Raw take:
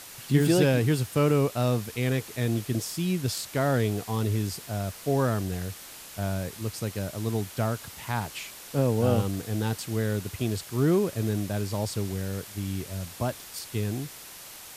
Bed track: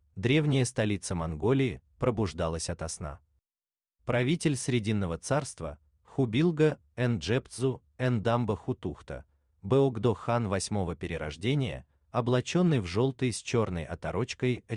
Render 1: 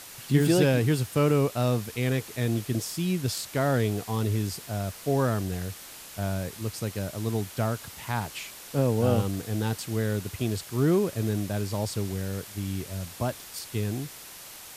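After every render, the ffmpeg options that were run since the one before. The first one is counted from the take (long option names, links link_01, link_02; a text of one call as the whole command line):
ffmpeg -i in.wav -af anull out.wav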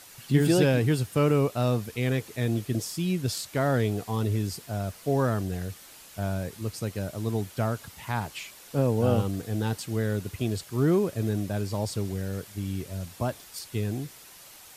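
ffmpeg -i in.wav -af "afftdn=noise_reduction=6:noise_floor=-45" out.wav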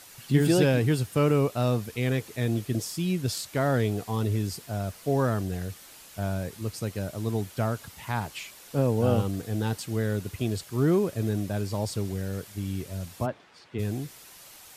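ffmpeg -i in.wav -filter_complex "[0:a]asplit=3[link_01][link_02][link_03];[link_01]afade=type=out:start_time=13.25:duration=0.02[link_04];[link_02]highpass=140,lowpass=2300,afade=type=in:start_time=13.25:duration=0.02,afade=type=out:start_time=13.78:duration=0.02[link_05];[link_03]afade=type=in:start_time=13.78:duration=0.02[link_06];[link_04][link_05][link_06]amix=inputs=3:normalize=0" out.wav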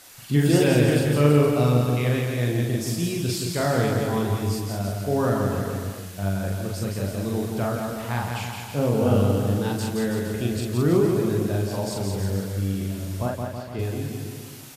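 ffmpeg -i in.wav -filter_complex "[0:a]asplit=2[link_01][link_02];[link_02]adelay=41,volume=-2dB[link_03];[link_01][link_03]amix=inputs=2:normalize=0,aecho=1:1:170|323|460.7|584.6|696.2:0.631|0.398|0.251|0.158|0.1" out.wav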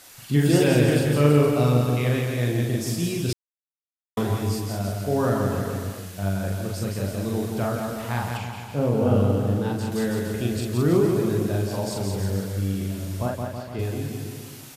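ffmpeg -i in.wav -filter_complex "[0:a]asettb=1/sr,asplit=3[link_01][link_02][link_03];[link_01]atrim=end=8.374[link_04];[link_02]atrim=start=8.37:end=9.92,asetpts=PTS-STARTPTS,afade=type=in:duration=0.004:curve=qsin,afade=type=out:start_time=1.546:duration=0.004:curve=qsin,highshelf=frequency=2500:gain=-8[link_05];[link_03]atrim=start=9.916[link_06];[link_04][link_05]acrossfade=duration=0.004:curve1=hsin:curve2=qsin[link_07];[link_07][link_06]acrossfade=duration=0.004:curve1=qsin:curve2=hsin,asplit=3[link_08][link_09][link_10];[link_08]atrim=end=3.33,asetpts=PTS-STARTPTS,afade=type=out:start_time=3.326:duration=0.004:curve=hsin[link_11];[link_09]atrim=start=3.33:end=4.17,asetpts=PTS-STARTPTS,volume=0[link_12];[link_10]atrim=start=4.17,asetpts=PTS-STARTPTS,afade=type=in:duration=0.004:curve=hsin[link_13];[link_11][link_12][link_13]concat=n=3:v=0:a=1" out.wav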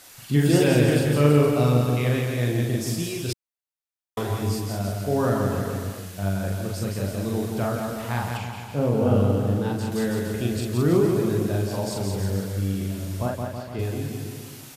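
ffmpeg -i in.wav -filter_complex "[0:a]asettb=1/sr,asplit=3[link_01][link_02][link_03];[link_01]atrim=end=3.024[link_04];[link_02]atrim=start=3.02:end=4.38,asetpts=PTS-STARTPTS,afade=type=in:duration=0.004:curve=qsin,afade=type=out:start_time=1.356:duration=0.004:curve=qsin,equalizer=frequency=190:width_type=o:width=0.99:gain=-9[link_05];[link_03]atrim=start=4.376[link_06];[link_04][link_05]acrossfade=duration=0.004:curve1=hsin:curve2=qsin[link_07];[link_07][link_06]acrossfade=duration=0.004:curve1=qsin:curve2=hsin" out.wav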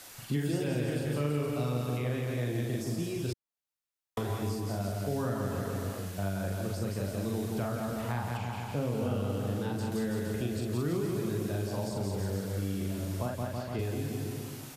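ffmpeg -i in.wav -filter_complex "[0:a]acrossover=split=250|1500[link_01][link_02][link_03];[link_01]acompressor=threshold=-34dB:ratio=4[link_04];[link_02]acompressor=threshold=-36dB:ratio=4[link_05];[link_03]acompressor=threshold=-47dB:ratio=4[link_06];[link_04][link_05][link_06]amix=inputs=3:normalize=0" out.wav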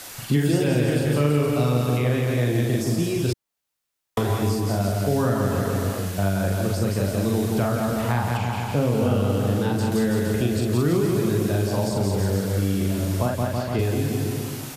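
ffmpeg -i in.wav -af "volume=10.5dB" out.wav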